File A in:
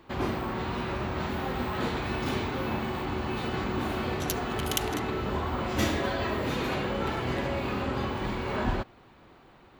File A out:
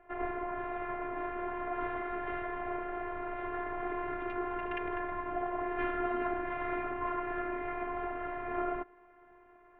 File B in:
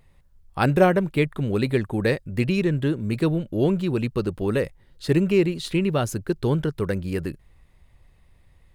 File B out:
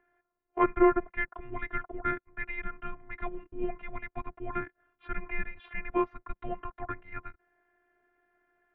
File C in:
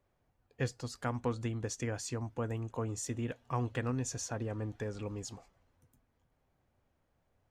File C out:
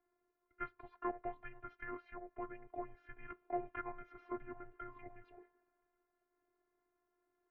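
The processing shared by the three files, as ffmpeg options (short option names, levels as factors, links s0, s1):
-af "afftfilt=real='hypot(re,im)*cos(PI*b)':imag='0':win_size=512:overlap=0.75,highpass=f=500:t=q:w=0.5412,highpass=f=500:t=q:w=1.307,lowpass=f=2400:t=q:w=0.5176,lowpass=f=2400:t=q:w=0.7071,lowpass=f=2400:t=q:w=1.932,afreqshift=-330,volume=1.41"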